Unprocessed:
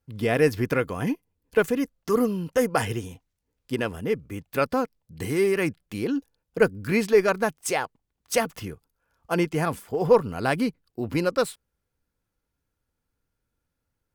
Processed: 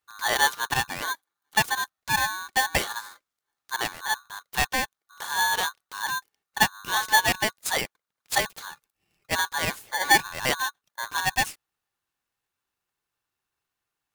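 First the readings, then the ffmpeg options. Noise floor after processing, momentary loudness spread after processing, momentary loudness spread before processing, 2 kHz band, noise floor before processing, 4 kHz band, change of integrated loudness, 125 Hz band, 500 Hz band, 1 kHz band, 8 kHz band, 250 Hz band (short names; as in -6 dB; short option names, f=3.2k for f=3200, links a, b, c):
under -85 dBFS, 13 LU, 12 LU, +6.5 dB, -81 dBFS, +11.0 dB, 0.0 dB, -9.5 dB, -13.5 dB, +5.0 dB, +8.5 dB, -14.0 dB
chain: -af "highpass=f=330:p=1,aeval=exprs='val(0)*sgn(sin(2*PI*1300*n/s))':c=same"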